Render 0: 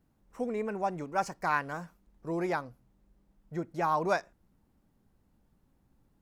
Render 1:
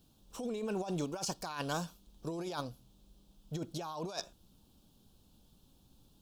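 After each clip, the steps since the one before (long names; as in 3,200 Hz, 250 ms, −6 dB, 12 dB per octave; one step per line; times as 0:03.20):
high shelf with overshoot 2,600 Hz +9 dB, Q 3
notch filter 2,000 Hz, Q 7.3
compressor whose output falls as the input rises −37 dBFS, ratio −1
level −1 dB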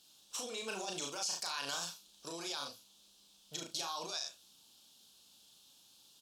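resonant band-pass 5,300 Hz, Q 0.67
ambience of single reflections 36 ms −3.5 dB, 71 ms −12.5 dB
brickwall limiter −37.5 dBFS, peak gain reduction 14 dB
level +10.5 dB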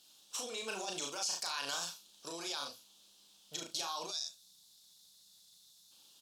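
low-shelf EQ 170 Hz −8 dB
gain on a spectral selection 0:04.11–0:05.91, 210–3,400 Hz −12 dB
surface crackle 260 per second −67 dBFS
level +1 dB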